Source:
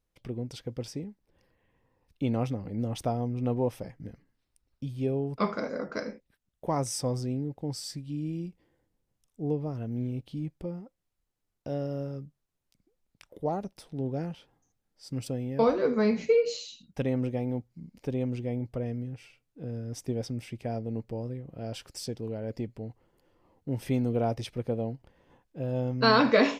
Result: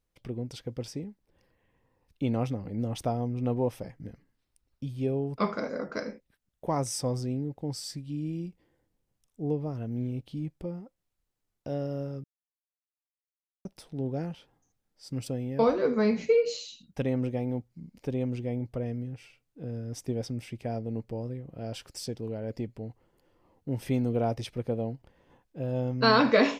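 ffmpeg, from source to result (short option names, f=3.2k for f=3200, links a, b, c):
-filter_complex "[0:a]asplit=3[a][b][c];[a]atrim=end=12.24,asetpts=PTS-STARTPTS,afade=t=out:st=12.236:d=0.004:c=hsin[d];[b]atrim=start=12.24:end=13.65,asetpts=PTS-STARTPTS,volume=0[e];[c]atrim=start=13.65,asetpts=PTS-STARTPTS,afade=t=in:d=0.004:c=hsin[f];[d][e][f]concat=n=3:v=0:a=1"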